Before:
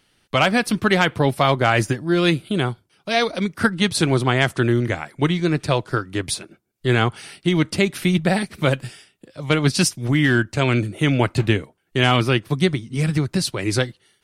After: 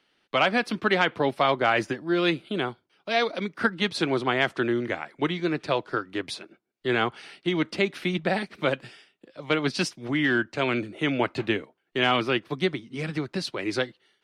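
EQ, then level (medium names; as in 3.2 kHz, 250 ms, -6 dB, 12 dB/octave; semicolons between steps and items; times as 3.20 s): three-band isolator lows -17 dB, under 210 Hz, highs -17 dB, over 5 kHz; -4.0 dB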